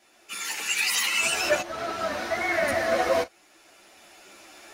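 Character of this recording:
tremolo saw up 0.62 Hz, depth 80%
a shimmering, thickened sound

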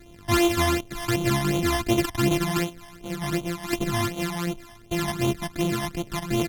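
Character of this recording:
a buzz of ramps at a fixed pitch in blocks of 128 samples
phaser sweep stages 12, 2.7 Hz, lowest notch 420–1,700 Hz
AAC

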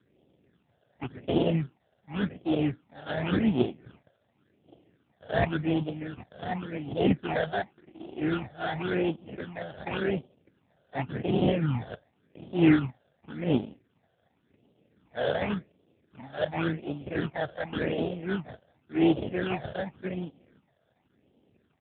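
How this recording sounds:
aliases and images of a low sample rate 1,100 Hz, jitter 20%
phaser sweep stages 8, 0.9 Hz, lowest notch 300–1,700 Hz
AMR narrowband

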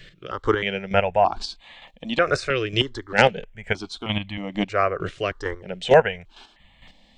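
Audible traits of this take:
chopped level 2.2 Hz, depth 60%, duty 20%
notches that jump at a steady rate 3.2 Hz 230–1,500 Hz

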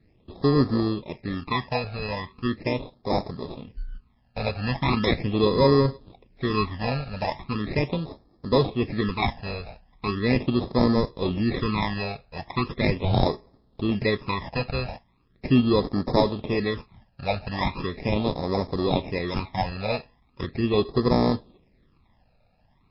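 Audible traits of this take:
aliases and images of a low sample rate 1,500 Hz, jitter 0%
phaser sweep stages 12, 0.39 Hz, lowest notch 330–2,700 Hz
MP3

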